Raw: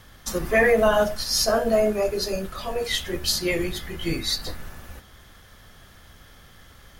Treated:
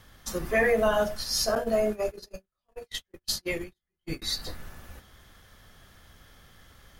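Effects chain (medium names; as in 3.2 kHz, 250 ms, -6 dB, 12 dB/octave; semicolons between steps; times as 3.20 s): 1.55–4.22 s: gate -23 dBFS, range -48 dB; trim -5 dB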